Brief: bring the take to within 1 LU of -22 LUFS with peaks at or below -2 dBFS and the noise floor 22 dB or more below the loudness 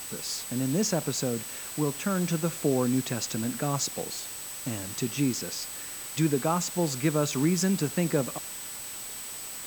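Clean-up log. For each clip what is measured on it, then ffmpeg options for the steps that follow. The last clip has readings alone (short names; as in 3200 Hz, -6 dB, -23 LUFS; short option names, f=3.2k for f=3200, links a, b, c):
steady tone 8000 Hz; tone level -40 dBFS; noise floor -39 dBFS; noise floor target -51 dBFS; loudness -29.0 LUFS; peak -12.5 dBFS; loudness target -22.0 LUFS
-> -af "bandreject=f=8k:w=30"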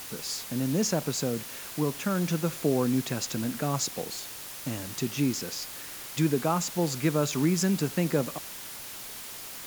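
steady tone none; noise floor -41 dBFS; noise floor target -52 dBFS
-> -af "afftdn=nr=11:nf=-41"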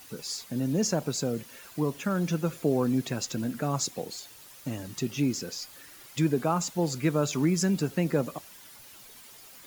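noise floor -50 dBFS; noise floor target -52 dBFS
-> -af "afftdn=nr=6:nf=-50"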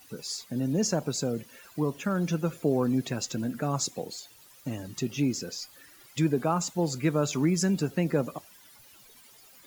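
noise floor -55 dBFS; loudness -29.5 LUFS; peak -13.0 dBFS; loudness target -22.0 LUFS
-> -af "volume=7.5dB"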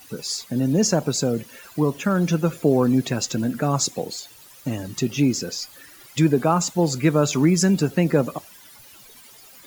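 loudness -22.0 LUFS; peak -5.5 dBFS; noise floor -47 dBFS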